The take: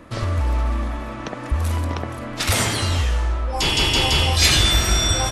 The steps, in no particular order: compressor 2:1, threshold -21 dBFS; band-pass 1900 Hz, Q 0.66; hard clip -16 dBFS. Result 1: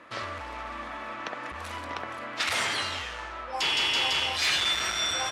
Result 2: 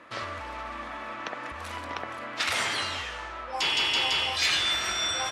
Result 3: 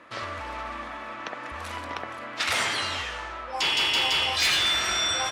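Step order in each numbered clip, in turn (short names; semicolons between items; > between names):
hard clip > compressor > band-pass; compressor > band-pass > hard clip; band-pass > hard clip > compressor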